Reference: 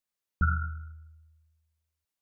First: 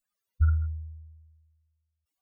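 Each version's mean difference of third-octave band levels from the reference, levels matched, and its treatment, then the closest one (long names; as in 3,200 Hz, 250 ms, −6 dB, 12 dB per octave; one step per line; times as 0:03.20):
4.5 dB: expanding power law on the bin magnitudes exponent 3.8
dynamic equaliser 110 Hz, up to +5 dB, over −43 dBFS, Q 3
level +3.5 dB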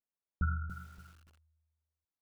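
10.5 dB: low-pass filter 1,200 Hz 12 dB per octave
feedback echo at a low word length 286 ms, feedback 35%, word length 8 bits, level −9.5 dB
level −5.5 dB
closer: first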